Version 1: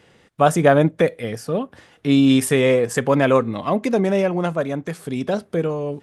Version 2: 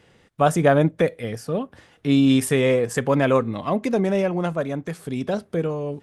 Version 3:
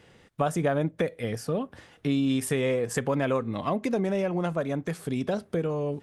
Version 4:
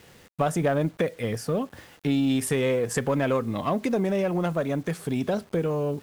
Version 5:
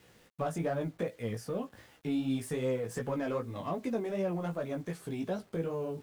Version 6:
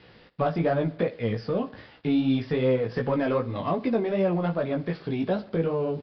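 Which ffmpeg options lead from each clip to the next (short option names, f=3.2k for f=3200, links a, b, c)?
-af "lowshelf=f=96:g=6.5,volume=-3dB"
-af "acompressor=threshold=-25dB:ratio=3"
-filter_complex "[0:a]asplit=2[a][b];[b]asoftclip=type=hard:threshold=-27dB,volume=-8dB[c];[a][c]amix=inputs=2:normalize=0,acrusher=bits=8:mix=0:aa=0.000001"
-filter_complex "[0:a]acrossover=split=1200[a][b];[b]asoftclip=type=tanh:threshold=-33dB[c];[a][c]amix=inputs=2:normalize=0,flanger=delay=15.5:depth=3.2:speed=2.6,volume=-6dB"
-af "aecho=1:1:62|124|186|248|310:0.1|0.057|0.0325|0.0185|0.0106,aresample=11025,aresample=44100,volume=8.5dB"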